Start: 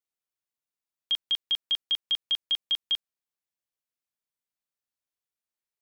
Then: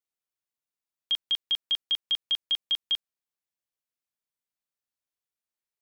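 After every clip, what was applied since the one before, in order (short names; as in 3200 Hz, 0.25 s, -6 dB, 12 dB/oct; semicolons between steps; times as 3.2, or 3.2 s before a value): nothing audible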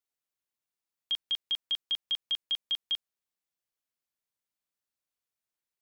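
limiter -24.5 dBFS, peak gain reduction 4 dB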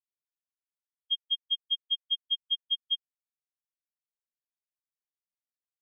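spectral expander 4:1; gain +3.5 dB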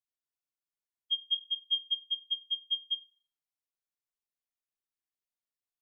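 flange 0.69 Hz, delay 8.1 ms, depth 1.4 ms, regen +65%; reverb RT60 0.50 s, pre-delay 3 ms, DRR 6 dB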